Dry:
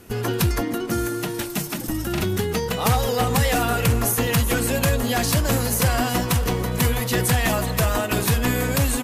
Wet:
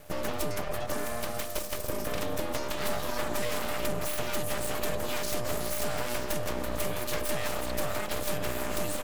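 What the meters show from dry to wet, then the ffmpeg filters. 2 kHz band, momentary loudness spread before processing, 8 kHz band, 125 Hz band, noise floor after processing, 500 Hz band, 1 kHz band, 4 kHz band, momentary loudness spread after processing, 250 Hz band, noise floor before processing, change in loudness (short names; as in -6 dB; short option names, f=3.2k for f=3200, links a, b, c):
-10.0 dB, 6 LU, -10.5 dB, -18.5 dB, -34 dBFS, -7.5 dB, -10.0 dB, -9.5 dB, 2 LU, -14.0 dB, -29 dBFS, -11.0 dB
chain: -af "acompressor=threshold=-24dB:ratio=4,aeval=exprs='val(0)*sin(2*PI*300*n/s)':c=same,aeval=exprs='abs(val(0))':c=same"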